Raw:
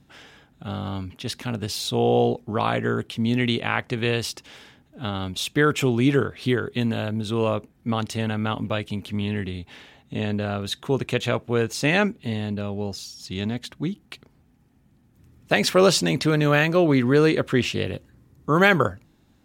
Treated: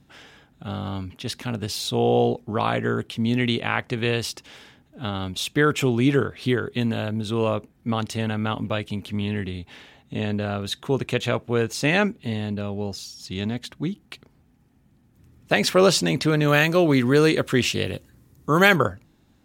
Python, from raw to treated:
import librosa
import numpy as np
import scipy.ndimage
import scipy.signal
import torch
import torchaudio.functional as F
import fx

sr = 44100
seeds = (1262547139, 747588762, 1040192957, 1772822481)

y = fx.high_shelf(x, sr, hz=4500.0, db=10.0, at=(16.48, 18.76))